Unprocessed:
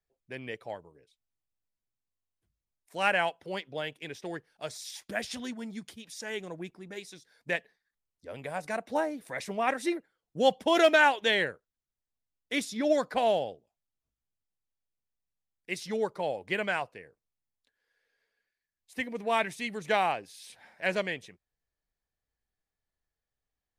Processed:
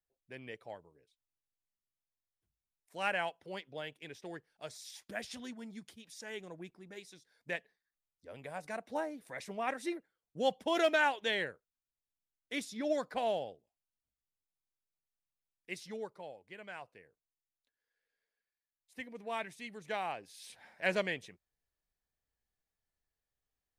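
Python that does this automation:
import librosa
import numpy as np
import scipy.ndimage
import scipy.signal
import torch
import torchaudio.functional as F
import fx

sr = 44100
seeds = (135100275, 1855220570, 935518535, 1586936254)

y = fx.gain(x, sr, db=fx.line((15.72, -7.5), (16.55, -20.0), (16.97, -11.0), (20.03, -11.0), (20.44, -2.5)))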